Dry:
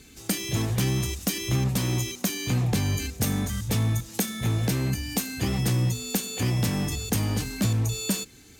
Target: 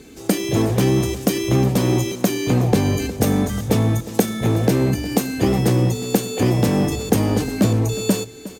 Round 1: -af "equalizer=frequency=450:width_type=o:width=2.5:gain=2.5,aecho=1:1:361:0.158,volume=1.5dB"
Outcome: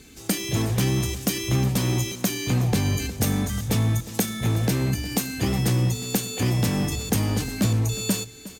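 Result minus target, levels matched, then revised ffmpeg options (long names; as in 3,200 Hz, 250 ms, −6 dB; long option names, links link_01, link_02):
500 Hz band −5.5 dB
-af "equalizer=frequency=450:width_type=o:width=2.5:gain=13.5,aecho=1:1:361:0.158,volume=1.5dB"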